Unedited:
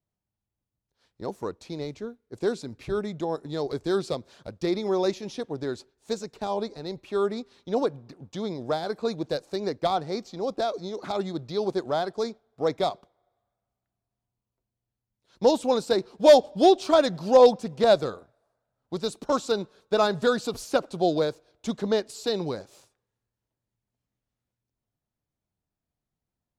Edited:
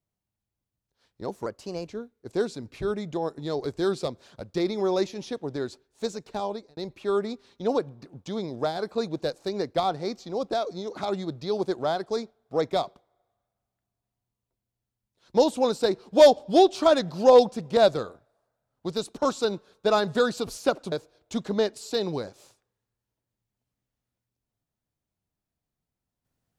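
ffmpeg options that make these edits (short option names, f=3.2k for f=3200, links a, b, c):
-filter_complex "[0:a]asplit=5[a][b][c][d][e];[a]atrim=end=1.464[f];[b]atrim=start=1.46:end=1.95,asetpts=PTS-STARTPTS,asetrate=51597,aresample=44100,atrim=end_sample=18469,asetpts=PTS-STARTPTS[g];[c]atrim=start=1.946:end=6.84,asetpts=PTS-STARTPTS,afade=t=out:st=4.514:d=0.38[h];[d]atrim=start=6.84:end=20.992,asetpts=PTS-STARTPTS,afade=t=in:d=0.004:c=hsin[i];[e]atrim=start=21.248[j];[f][g]acrossfade=d=0.004:c1=hsin:c2=hsin[k];[h][i]concat=n=2:v=0:a=1[l];[k][l]acrossfade=d=0.004:c1=hsin:c2=hsin[m];[m][j]acrossfade=d=0.004:c1=hsin:c2=hsin"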